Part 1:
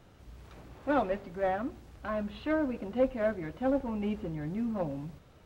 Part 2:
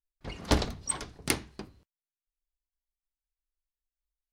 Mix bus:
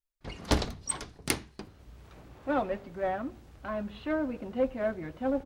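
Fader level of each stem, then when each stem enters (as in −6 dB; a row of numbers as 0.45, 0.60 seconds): −1.0, −1.0 decibels; 1.60, 0.00 seconds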